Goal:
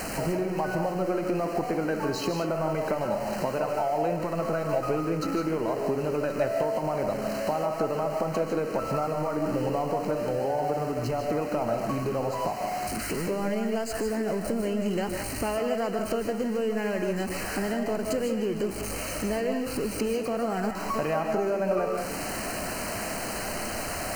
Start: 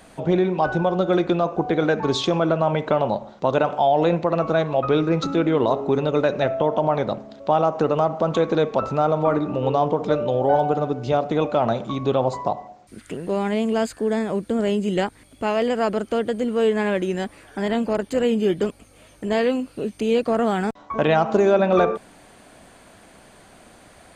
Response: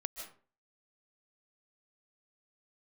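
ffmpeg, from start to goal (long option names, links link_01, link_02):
-filter_complex "[0:a]aeval=exprs='val(0)+0.5*0.0473*sgn(val(0))':channel_layout=same,acompressor=threshold=-25dB:ratio=4,asuperstop=centerf=3500:order=12:qfactor=4.1[link_01];[1:a]atrim=start_sample=2205[link_02];[link_01][link_02]afir=irnorm=-1:irlink=0"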